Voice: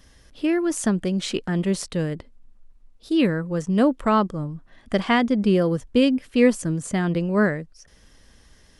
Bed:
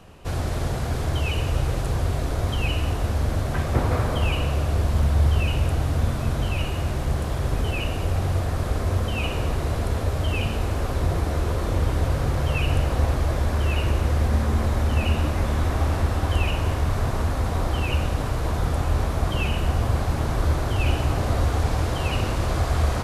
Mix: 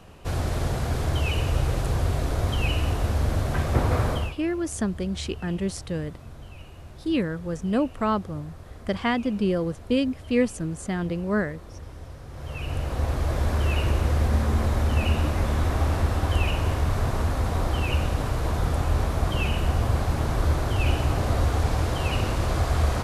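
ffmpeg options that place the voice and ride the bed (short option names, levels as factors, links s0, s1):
-filter_complex "[0:a]adelay=3950,volume=0.562[s0];[1:a]volume=7.08,afade=t=out:st=4.1:d=0.25:silence=0.125893,afade=t=in:st=12.28:d=1.2:silence=0.133352[s1];[s0][s1]amix=inputs=2:normalize=0"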